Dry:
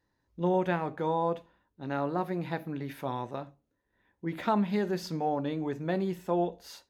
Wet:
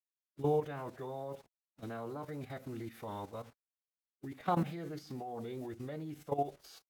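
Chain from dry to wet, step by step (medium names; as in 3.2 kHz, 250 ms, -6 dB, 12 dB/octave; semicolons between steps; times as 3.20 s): bit crusher 9-bit; level held to a coarse grid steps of 13 dB; formant-preserving pitch shift -3.5 st; trim -2.5 dB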